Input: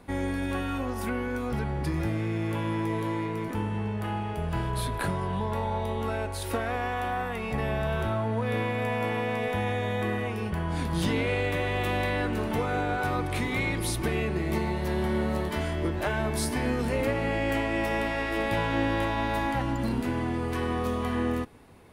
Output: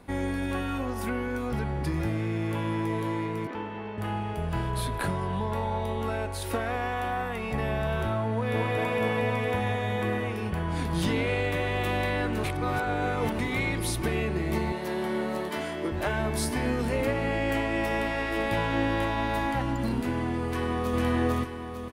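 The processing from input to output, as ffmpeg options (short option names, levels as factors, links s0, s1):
-filter_complex "[0:a]asettb=1/sr,asplit=3[s0][s1][s2];[s0]atrim=end=3.474[s3];[s1]atrim=start=3.47:end=3.98,asetpts=PTS-STARTPTS,afade=t=in:d=0.004:c=qsin,afade=t=out:st=0.506:d=0.004:c=qsin,acrossover=split=260 5000:gain=0.178 1 0.0708[s4][s5][s6];[s4][s5][s6]amix=inputs=3:normalize=0[s7];[s2]atrim=start=3.976[s8];[s3][s7]acrossfade=d=0.004:c1=hsin:c2=qsin[s9];[s9][s8]acrossfade=d=0.004:c1=qsin:c2=hsin,asplit=2[s10][s11];[s11]afade=t=in:st=8.31:d=0.01,afade=t=out:st=8.75:d=0.01,aecho=0:1:230|460|690|920|1150|1380|1610|1840|2070|2300|2530|2760:0.749894|0.599915|0.479932|0.383946|0.307157|0.245725|0.19658|0.157264|0.125811|0.100649|0.0805193|0.0644154[s12];[s10][s12]amix=inputs=2:normalize=0,asettb=1/sr,asplit=3[s13][s14][s15];[s13]atrim=end=14.724[s16];[s14]atrim=start=14.72:end=15.92,asetpts=PTS-STARTPTS,afade=t=in:d=0.004:c=qsin,afade=t=out:st=1.196:d=0.004:c=qsin,highpass=220[s17];[s15]atrim=start=15.916[s18];[s16][s17]acrossfade=d=0.004:c1=hsin:c2=qsin[s19];[s19][s18]acrossfade=d=0.004:c1=qsin:c2=hsin,asplit=2[s20][s21];[s21]afade=t=in:st=20.48:d=0.01,afade=t=out:st=20.98:d=0.01,aecho=0:1:450|900|1350|1800|2250:0.944061|0.377624|0.15105|0.0604199|0.024168[s22];[s20][s22]amix=inputs=2:normalize=0,asplit=3[s23][s24][s25];[s23]atrim=end=12.442[s26];[s24]atrim=start=12.438:end=13.392,asetpts=PTS-STARTPTS,areverse[s27];[s25]atrim=start=13.388[s28];[s26][s27]acrossfade=d=0.004:c1=hsin:c2=hsin[s29];[s29][s28]acrossfade=d=0.004:c1=hsin:c2=hsin"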